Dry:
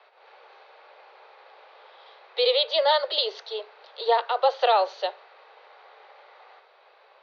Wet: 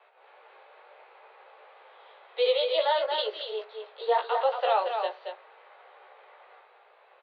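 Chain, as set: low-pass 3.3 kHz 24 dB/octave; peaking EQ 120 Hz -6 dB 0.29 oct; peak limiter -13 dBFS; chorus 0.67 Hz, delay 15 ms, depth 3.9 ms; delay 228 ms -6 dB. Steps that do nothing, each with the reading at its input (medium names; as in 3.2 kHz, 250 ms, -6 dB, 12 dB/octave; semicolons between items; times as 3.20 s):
peaking EQ 120 Hz: input has nothing below 360 Hz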